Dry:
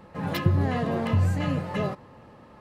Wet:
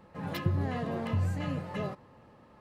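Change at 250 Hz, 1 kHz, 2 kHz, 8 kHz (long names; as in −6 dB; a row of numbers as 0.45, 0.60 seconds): −7.0 dB, −7.0 dB, −7.0 dB, can't be measured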